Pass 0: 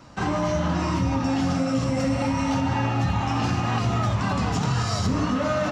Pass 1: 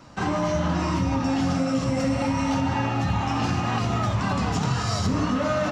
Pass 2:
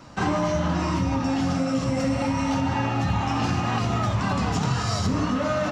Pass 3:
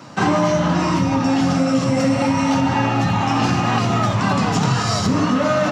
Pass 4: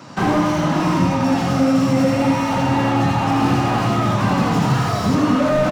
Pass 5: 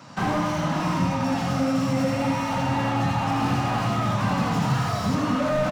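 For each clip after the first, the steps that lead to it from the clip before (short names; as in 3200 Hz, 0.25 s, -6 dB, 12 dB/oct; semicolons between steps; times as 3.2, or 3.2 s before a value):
notches 60/120 Hz
vocal rider
HPF 110 Hz 24 dB/oct; gain +7 dB
echo 83 ms -3.5 dB; slew limiter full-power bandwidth 130 Hz
bell 360 Hz -7.5 dB 0.69 oct; gain -5 dB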